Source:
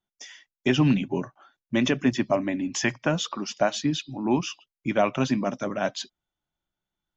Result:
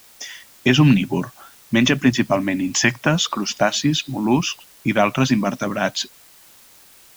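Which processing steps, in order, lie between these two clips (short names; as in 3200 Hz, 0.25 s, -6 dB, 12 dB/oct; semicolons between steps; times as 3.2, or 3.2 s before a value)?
dynamic EQ 480 Hz, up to -7 dB, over -36 dBFS, Q 0.79; in parallel at -7 dB: requantised 8-bit, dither triangular; on the sum: gain +6.5 dB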